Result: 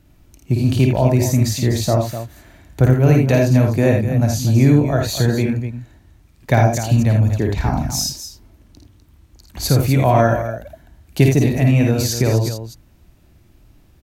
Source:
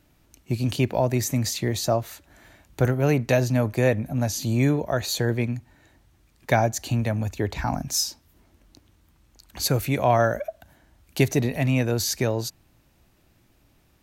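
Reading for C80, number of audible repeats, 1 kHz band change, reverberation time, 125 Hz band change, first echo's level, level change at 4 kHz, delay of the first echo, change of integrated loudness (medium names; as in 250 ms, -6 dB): no reverb, 2, +4.5 dB, no reverb, +10.5 dB, -4.0 dB, +3.5 dB, 52 ms, +7.5 dB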